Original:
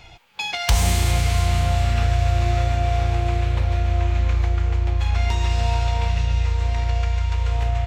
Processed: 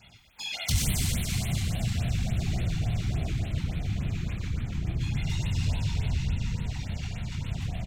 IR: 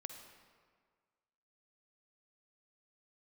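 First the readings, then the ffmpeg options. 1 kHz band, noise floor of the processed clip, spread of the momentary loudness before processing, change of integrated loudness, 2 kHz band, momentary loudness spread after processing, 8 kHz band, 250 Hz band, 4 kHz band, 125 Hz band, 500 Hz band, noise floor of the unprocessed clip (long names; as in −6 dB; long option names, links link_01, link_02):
−19.0 dB, −47 dBFS, 3 LU, −9.0 dB, −9.5 dB, 6 LU, −3.5 dB, 0.0 dB, −6.0 dB, −8.0 dB, −16.0 dB, −34 dBFS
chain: -filter_complex "[0:a]highshelf=frequency=6500:gain=4.5,flanger=delay=19:depth=6.5:speed=0.35,afftfilt=real='hypot(re,im)*cos(2*PI*random(0))':imag='hypot(re,im)*sin(2*PI*random(1))':win_size=512:overlap=0.75,acrossover=split=750|1700[link_01][link_02][link_03];[link_02]acompressor=threshold=-54dB:ratio=6[link_04];[link_01][link_04][link_03]amix=inputs=3:normalize=0,highpass=frequency=78:poles=1,equalizer=frequency=640:width=0.54:gain=-9.5,asplit=6[link_05][link_06][link_07][link_08][link_09][link_10];[link_06]adelay=122,afreqshift=-38,volume=-6.5dB[link_11];[link_07]adelay=244,afreqshift=-76,volume=-13.2dB[link_12];[link_08]adelay=366,afreqshift=-114,volume=-20dB[link_13];[link_09]adelay=488,afreqshift=-152,volume=-26.7dB[link_14];[link_10]adelay=610,afreqshift=-190,volume=-33.5dB[link_15];[link_05][link_11][link_12][link_13][link_14][link_15]amix=inputs=6:normalize=0,asplit=2[link_16][link_17];[link_17]asoftclip=type=tanh:threshold=-27dB,volume=-5dB[link_18];[link_16][link_18]amix=inputs=2:normalize=0,acontrast=77,afftfilt=real='re*(1-between(b*sr/1024,480*pow(6300/480,0.5+0.5*sin(2*PI*3.5*pts/sr))/1.41,480*pow(6300/480,0.5+0.5*sin(2*PI*3.5*pts/sr))*1.41))':imag='im*(1-between(b*sr/1024,480*pow(6300/480,0.5+0.5*sin(2*PI*3.5*pts/sr))/1.41,480*pow(6300/480,0.5+0.5*sin(2*PI*3.5*pts/sr))*1.41))':win_size=1024:overlap=0.75,volume=-6.5dB"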